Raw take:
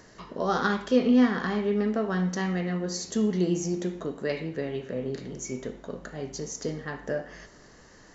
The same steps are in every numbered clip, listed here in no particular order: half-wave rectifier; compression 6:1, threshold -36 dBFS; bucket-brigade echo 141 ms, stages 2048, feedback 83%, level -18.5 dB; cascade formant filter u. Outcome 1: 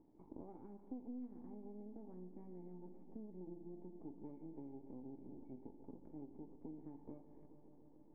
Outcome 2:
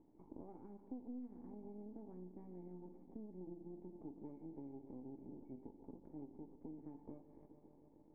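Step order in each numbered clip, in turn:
half-wave rectifier > bucket-brigade echo > compression > cascade formant filter; bucket-brigade echo > compression > half-wave rectifier > cascade formant filter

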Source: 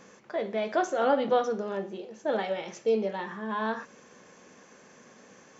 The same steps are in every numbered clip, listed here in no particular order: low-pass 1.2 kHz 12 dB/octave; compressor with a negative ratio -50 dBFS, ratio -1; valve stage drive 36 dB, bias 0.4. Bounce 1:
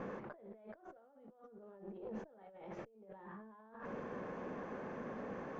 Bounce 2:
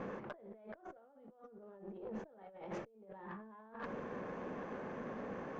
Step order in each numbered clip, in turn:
compressor with a negative ratio > valve stage > low-pass; low-pass > compressor with a negative ratio > valve stage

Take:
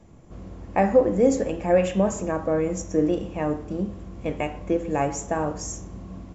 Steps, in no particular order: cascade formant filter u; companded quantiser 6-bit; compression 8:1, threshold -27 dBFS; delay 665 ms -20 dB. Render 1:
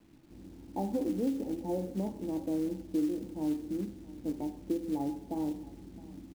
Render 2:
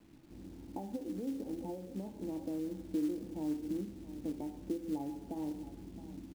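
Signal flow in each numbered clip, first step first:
cascade formant filter > compression > companded quantiser > delay; delay > compression > cascade formant filter > companded quantiser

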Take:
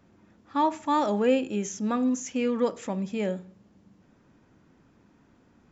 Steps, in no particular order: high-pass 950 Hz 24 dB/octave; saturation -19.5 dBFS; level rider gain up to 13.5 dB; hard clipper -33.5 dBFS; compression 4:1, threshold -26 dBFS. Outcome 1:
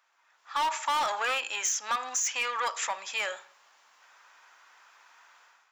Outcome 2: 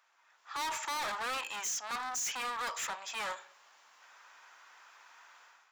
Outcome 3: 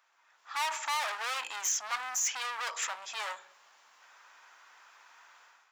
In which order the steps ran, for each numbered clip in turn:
saturation > high-pass > hard clipper > level rider > compression; level rider > saturation > high-pass > hard clipper > compression; hard clipper > level rider > compression > saturation > high-pass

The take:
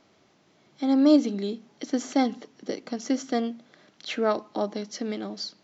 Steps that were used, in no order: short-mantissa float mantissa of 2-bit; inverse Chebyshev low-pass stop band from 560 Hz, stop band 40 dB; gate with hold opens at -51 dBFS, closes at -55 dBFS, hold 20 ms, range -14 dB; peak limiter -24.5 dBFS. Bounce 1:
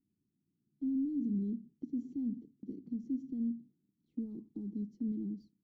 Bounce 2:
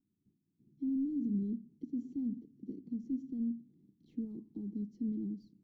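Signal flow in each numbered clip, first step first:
peak limiter > short-mantissa float > inverse Chebyshev low-pass > gate with hold; gate with hold > short-mantissa float > peak limiter > inverse Chebyshev low-pass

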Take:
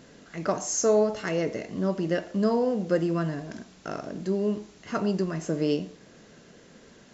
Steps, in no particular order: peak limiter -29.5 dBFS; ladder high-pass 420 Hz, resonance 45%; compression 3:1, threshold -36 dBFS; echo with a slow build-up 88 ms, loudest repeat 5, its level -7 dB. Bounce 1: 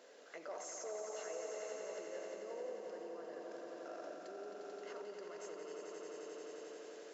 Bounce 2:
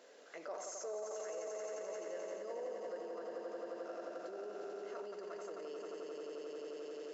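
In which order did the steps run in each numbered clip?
peak limiter > echo with a slow build-up > compression > ladder high-pass; echo with a slow build-up > peak limiter > ladder high-pass > compression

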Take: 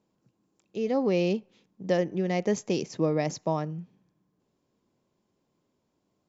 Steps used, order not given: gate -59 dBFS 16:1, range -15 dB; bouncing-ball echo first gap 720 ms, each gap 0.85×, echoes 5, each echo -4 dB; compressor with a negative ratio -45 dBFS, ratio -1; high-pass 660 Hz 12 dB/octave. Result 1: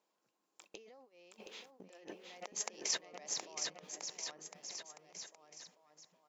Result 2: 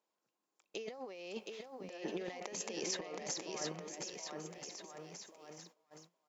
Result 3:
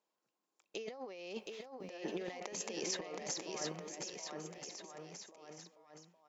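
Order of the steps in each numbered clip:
compressor with a negative ratio > high-pass > gate > bouncing-ball echo; high-pass > compressor with a negative ratio > bouncing-ball echo > gate; high-pass > compressor with a negative ratio > gate > bouncing-ball echo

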